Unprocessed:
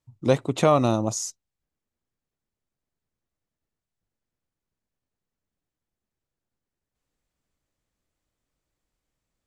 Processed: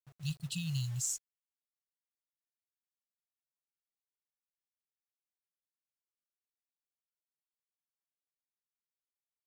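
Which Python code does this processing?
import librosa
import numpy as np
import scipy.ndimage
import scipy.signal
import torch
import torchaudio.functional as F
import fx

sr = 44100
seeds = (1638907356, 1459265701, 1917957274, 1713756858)

y = fx.doppler_pass(x, sr, speed_mps=37, closest_m=15.0, pass_at_s=2.31)
y = fx.brickwall_bandstop(y, sr, low_hz=180.0, high_hz=2500.0)
y = fx.quant_companded(y, sr, bits=6)
y = F.gain(torch.from_numpy(y), 6.5).numpy()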